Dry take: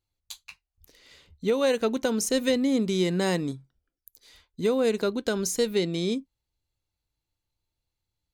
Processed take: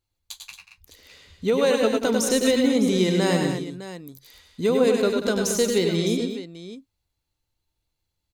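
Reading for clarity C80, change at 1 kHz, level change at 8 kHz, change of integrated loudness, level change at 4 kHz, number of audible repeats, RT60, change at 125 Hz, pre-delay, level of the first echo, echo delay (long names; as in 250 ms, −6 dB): no reverb audible, +4.5 dB, +4.5 dB, +4.5 dB, +4.5 dB, 4, no reverb audible, +5.0 dB, no reverb audible, −6.5 dB, 96 ms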